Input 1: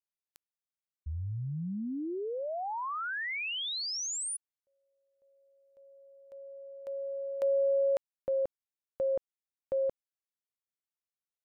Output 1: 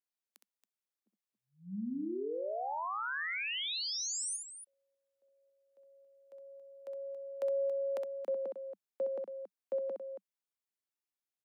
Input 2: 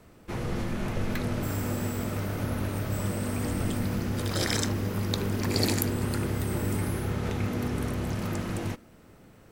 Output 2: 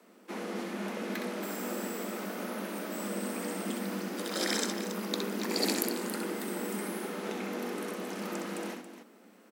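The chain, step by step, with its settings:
Butterworth high-pass 190 Hz 96 dB per octave
on a send: loudspeakers that aren't time-aligned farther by 22 metres −6 dB, 95 metres −11 dB
on the sum: level −3 dB

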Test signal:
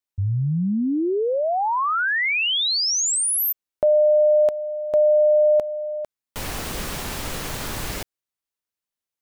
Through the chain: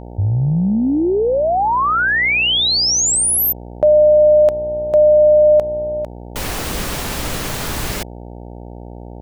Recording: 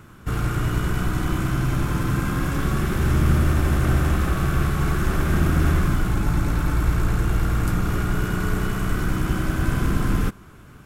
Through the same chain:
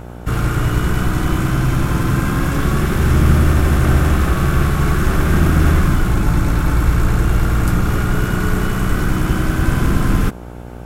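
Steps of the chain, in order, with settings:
hum with harmonics 60 Hz, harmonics 15, −39 dBFS −4 dB per octave
level +6 dB

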